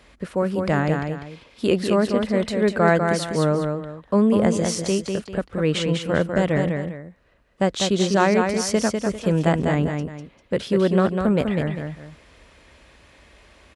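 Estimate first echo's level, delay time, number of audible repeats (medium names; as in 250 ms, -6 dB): -5.0 dB, 198 ms, 2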